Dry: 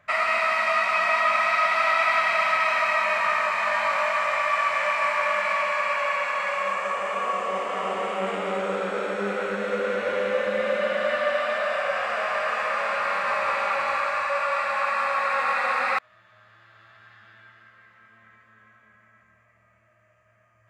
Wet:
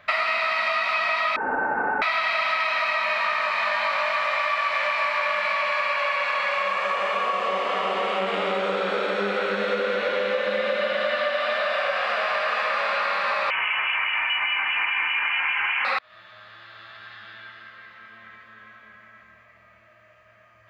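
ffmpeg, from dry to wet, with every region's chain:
ffmpeg -i in.wav -filter_complex "[0:a]asettb=1/sr,asplit=3[link_01][link_02][link_03];[link_01]atrim=end=1.364[link_04];[link_02]atrim=start=1.36:end=2.02,asetpts=PTS-STARTPTS,afade=type=in:duration=0.004:curve=qsin,afade=type=out:start_time=0.656:duration=0.004:curve=qsin,highpass=frequency=1500:width=0.5412,highpass=frequency=1500:width=1.3066,acrusher=bits=5:mode=log:mix=0:aa=0.000001,lowpass=frequency=2400:width_type=q:width=0.5098,lowpass=frequency=2400:width_type=q:width=0.6013,lowpass=frequency=2400:width_type=q:width=0.9,lowpass=frequency=2400:width_type=q:width=2.563,afreqshift=-2800[link_05];[link_03]atrim=start=2.016[link_06];[link_04][link_05]acrossfade=duration=0.004:curve1=hsin:curve2=qsin[link_07];[link_07][link_06]acrossfade=duration=0.004:curve1=qsin:curve2=hsin,asettb=1/sr,asplit=3[link_08][link_09][link_10];[link_08]atrim=end=13.504[link_11];[link_09]atrim=start=13.5:end=15.85,asetpts=PTS-STARTPTS,afade=type=in:duration=0.004:curve=qsin,afade=type=out:start_time=2.346:duration=0.004:curve=qsin,tiltshelf=frequency=1200:gain=-6,acrossover=split=1200[link_12][link_13];[link_12]aeval=exprs='val(0)*(1-0.5/2+0.5/2*cos(2*PI*4.9*n/s))':channel_layout=same[link_14];[link_13]aeval=exprs='val(0)*(1-0.5/2-0.5/2*cos(2*PI*4.9*n/s))':channel_layout=same[link_15];[link_14][link_15]amix=inputs=2:normalize=0,lowpass=frequency=3000:width_type=q:width=0.5098,lowpass=frequency=3000:width_type=q:width=0.6013,lowpass=frequency=3000:width_type=q:width=0.9,lowpass=frequency=3000:width_type=q:width=2.563,afreqshift=-3500[link_16];[link_10]atrim=start=15.846[link_17];[link_11][link_16]acrossfade=duration=0.004:curve1=hsin:curve2=qsin[link_18];[link_18][link_17]acrossfade=duration=0.004:curve1=qsin:curve2=hsin,equalizer=frequency=125:width_type=o:width=1:gain=-7,equalizer=frequency=4000:width_type=o:width=1:gain=11,equalizer=frequency=8000:width_type=o:width=1:gain=-11,acompressor=threshold=-29dB:ratio=6,volume=7.5dB" out.wav

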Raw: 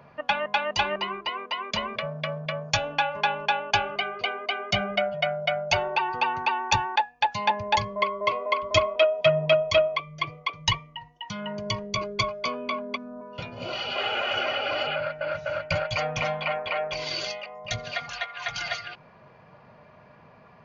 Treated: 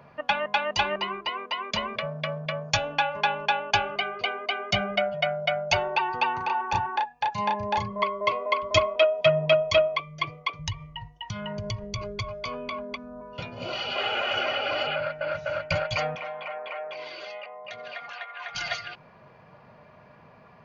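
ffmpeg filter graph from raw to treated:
ffmpeg -i in.wav -filter_complex "[0:a]asettb=1/sr,asplit=3[link_01][link_02][link_03];[link_01]atrim=end=6.374[link_04];[link_02]atrim=start=6.37:end=8.03,asetpts=PTS-STARTPTS,afade=type=in:duration=0.004:curve=qsin,afade=type=out:start_time=1.656:duration=0.004:curve=qsin,equalizer=frequency=630:width=4.9:gain=-4,acrossover=split=1500|4800[link_05][link_06][link_07];[link_05]acompressor=threshold=-24dB:ratio=4[link_08];[link_06]acompressor=threshold=-41dB:ratio=4[link_09];[link_07]acompressor=threshold=-53dB:ratio=4[link_10];[link_08][link_09][link_10]amix=inputs=3:normalize=0,asplit=2[link_11][link_12];[link_12]adelay=34,volume=-2.5dB[link_13];[link_11][link_13]amix=inputs=2:normalize=0,atrim=end_sample=73206[link_14];[link_03]atrim=start=8.026[link_15];[link_04][link_14]acrossfade=duration=0.004:curve1=hsin:curve2=qsin[link_16];[link_16][link_15]acrossfade=duration=0.004:curve1=qsin:curve2=hsin,asettb=1/sr,asplit=3[link_17][link_18][link_19];[link_17]atrim=end=10.594[link_20];[link_18]atrim=start=10.59:end=13.35,asetpts=PTS-STARTPTS,afade=type=in:duration=0.004:curve=qsin,afade=type=out:start_time=2.756:duration=0.004:curve=qsin,lowshelf=frequency=150:width_type=q:width=1.5:gain=13,acompressor=threshold=-28dB:ratio=6:attack=3.2:release=140:knee=1:detection=peak[link_21];[link_19]atrim=start=13.346[link_22];[link_20][link_21]acrossfade=duration=0.004:curve1=hsin:curve2=qsin[link_23];[link_23][link_22]acrossfade=duration=0.004:curve1=qsin:curve2=hsin,asettb=1/sr,asplit=3[link_24][link_25][link_26];[link_24]atrim=end=16.154[link_27];[link_25]atrim=start=16.15:end=18.55,asetpts=PTS-STARTPTS,afade=type=in:duration=0.004:curve=qsin,afade=type=out:start_time=2.396:duration=0.004:curve=qsin,aeval=exprs='clip(val(0),-1,0.0944)':channel_layout=same,acompressor=threshold=-32dB:ratio=3:attack=3.2:release=140:knee=1:detection=peak,highpass=370,lowpass=2600[link_28];[link_26]atrim=start=18.546[link_29];[link_27][link_28]acrossfade=duration=0.004:curve1=hsin:curve2=qsin[link_30];[link_30][link_29]acrossfade=duration=0.004:curve1=qsin:curve2=hsin" out.wav

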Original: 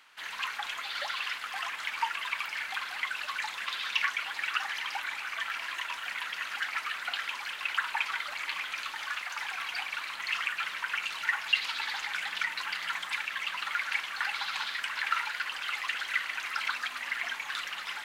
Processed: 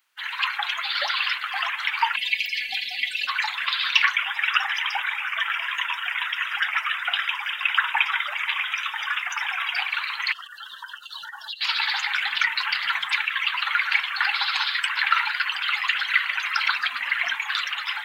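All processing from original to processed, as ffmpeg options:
ffmpeg -i in.wav -filter_complex "[0:a]asettb=1/sr,asplit=3[link_01][link_02][link_03];[link_01]atrim=end=2.164[link_04];[link_02]atrim=start=2.16:end=3.27,asetpts=PTS-STARTPTS,afade=type=in:duration=0.004:curve=qsin,afade=type=out:start_time=1.106:duration=0.004:curve=qsin,asuperstop=centerf=1200:order=4:qfactor=0.72,aecho=1:1:4.1:0.93,atrim=end_sample=48951[link_05];[link_03]atrim=start=3.266[link_06];[link_04][link_05]acrossfade=duration=0.004:curve1=hsin:curve2=qsin[link_07];[link_07][link_06]acrossfade=duration=0.004:curve1=qsin:curve2=hsin,asettb=1/sr,asplit=3[link_08][link_09][link_10];[link_08]atrim=end=4.174[link_11];[link_09]atrim=start=4.17:end=9.79,asetpts=PTS-STARTPTS,afade=type=in:duration=0.004:curve=qsin,afade=type=out:start_time=5.616:duration=0.004:curve=qsin,asuperstop=centerf=4300:order=4:qfactor=4.8,lowshelf=frequency=130:gain=-8[link_12];[link_10]atrim=start=9.786[link_13];[link_11][link_12]acrossfade=duration=0.004:curve1=hsin:curve2=qsin[link_14];[link_14][link_13]acrossfade=duration=0.004:curve1=qsin:curve2=hsin,asettb=1/sr,asplit=3[link_15][link_16][link_17];[link_15]atrim=end=10.324[link_18];[link_16]atrim=start=10.32:end=11.61,asetpts=PTS-STARTPTS,afade=type=in:duration=0.004:curve=qsin,afade=type=out:start_time=1.286:duration=0.004:curve=qsin,equalizer=frequency=1300:width_type=o:width=1.1:gain=-7.5,acompressor=threshold=-36dB:ratio=6:attack=3.2:release=140:knee=1:detection=peak,asuperstop=centerf=2300:order=4:qfactor=1.7[link_19];[link_17]atrim=start=11.606[link_20];[link_18][link_19]acrossfade=duration=0.004:curve1=hsin:curve2=qsin[link_21];[link_21][link_20]acrossfade=duration=0.004:curve1=qsin:curve2=hsin,lowshelf=frequency=190:gain=11,afftdn=noise_reduction=23:noise_floor=-43,aemphasis=mode=production:type=bsi,volume=8dB" out.wav

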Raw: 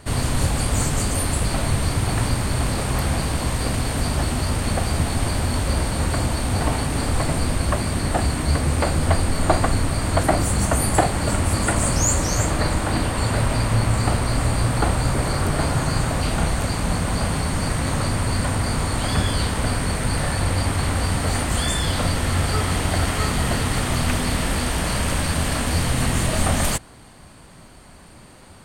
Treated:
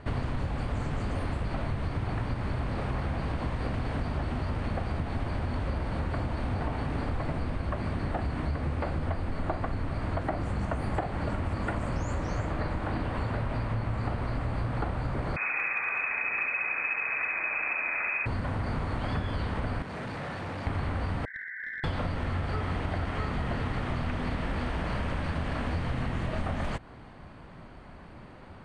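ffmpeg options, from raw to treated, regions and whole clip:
ffmpeg -i in.wav -filter_complex "[0:a]asettb=1/sr,asplit=3[link_01][link_02][link_03];[link_01]atrim=end=15.364[link_04];[link_02]atrim=start=15.36:end=18.26,asetpts=PTS-STARTPTS,afade=type=in:duration=0.004:curve=qsin,afade=type=out:start_time=2.896:duration=0.004:curve=qsin,lowpass=frequency=2200:width_type=q:width=0.5098,lowpass=frequency=2200:width_type=q:width=0.6013,lowpass=frequency=2200:width_type=q:width=0.9,lowpass=frequency=2200:width_type=q:width=2.563,afreqshift=-2600,volume=12dB,asoftclip=hard,volume=-12dB,aecho=1:1:68|136|204|272|340|408:0.562|0.287|0.146|0.0746|0.038|0.0194,atrim=end_sample=127890[link_05];[link_03]atrim=start=18.256[link_06];[link_04][link_05]acrossfade=duration=0.004:curve1=hsin:curve2=qsin[link_07];[link_07][link_06]acrossfade=duration=0.004:curve1=qsin:curve2=hsin,asettb=1/sr,asplit=3[link_08][link_09][link_10];[link_08]atrim=end=19.824[link_11];[link_09]atrim=start=19.82:end=20.67,asetpts=PTS-STARTPTS,afade=type=in:duration=0.004:curve=qsin,afade=type=out:start_time=0.846:duration=0.004:curve=qsin,highpass=140,volume=32dB,asoftclip=hard,volume=-32dB[link_12];[link_10]atrim=start=20.666[link_13];[link_11][link_12]acrossfade=duration=0.004:curve1=hsin:curve2=qsin[link_14];[link_14][link_13]acrossfade=duration=0.004:curve1=qsin:curve2=hsin,asettb=1/sr,asplit=3[link_15][link_16][link_17];[link_15]atrim=end=21.254[link_18];[link_16]atrim=start=21.25:end=21.84,asetpts=PTS-STARTPTS,afade=type=in:duration=0.004:curve=qsin,afade=type=out:start_time=0.586:duration=0.004:curve=qsin,asuperpass=centerf=1800:order=20:qfactor=2.7,aeval=exprs='clip(val(0),-1,0.0316)':channel_layout=same[link_19];[link_17]atrim=start=21.836[link_20];[link_18][link_19]acrossfade=duration=0.004:curve1=hsin:curve2=qsin[link_21];[link_21][link_20]acrossfade=duration=0.004:curve1=qsin:curve2=hsin,lowpass=2300,acompressor=threshold=-26dB:ratio=6,volume=-1.5dB" out.wav

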